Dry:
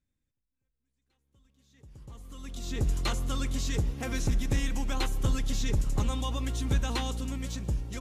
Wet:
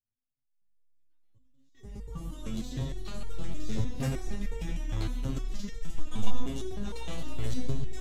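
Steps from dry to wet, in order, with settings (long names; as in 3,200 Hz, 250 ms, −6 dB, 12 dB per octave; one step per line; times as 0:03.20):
notch filter 2,600 Hz, Q 27
hum removal 69.29 Hz, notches 29
noise gate with hold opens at −56 dBFS
low-shelf EQ 290 Hz +11.5 dB
in parallel at +2.5 dB: downward compressor, threshold −27 dBFS, peak gain reduction 15.5 dB
on the sum: brickwall limiter −17 dBFS, peak gain reduction 11.5 dB
automatic gain control gain up to 12.5 dB
0:05.52–0:06.32: frequency shifter −46 Hz
soft clipping −15 dBFS, distortion −11 dB
feedback echo with a band-pass in the loop 146 ms, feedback 77%, band-pass 2,400 Hz, level −6.5 dB
on a send at −5 dB: convolution reverb RT60 0.80 s, pre-delay 35 ms
on the sum: step-sequenced resonator 6.5 Hz 110–460 Hz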